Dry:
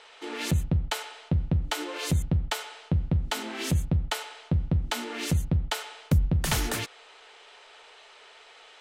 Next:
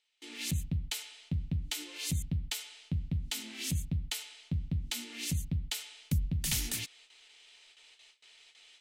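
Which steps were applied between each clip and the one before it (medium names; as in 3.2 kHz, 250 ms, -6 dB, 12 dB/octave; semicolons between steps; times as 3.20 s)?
high-order bell 770 Hz -12.5 dB 2.4 oct; gate with hold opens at -44 dBFS; treble shelf 3.4 kHz +8.5 dB; trim -8 dB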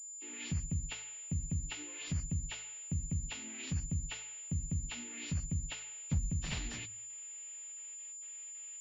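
knee-point frequency compression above 2.2 kHz 1.5:1; de-hum 53.84 Hz, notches 6; class-D stage that switches slowly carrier 7.1 kHz; trim -2.5 dB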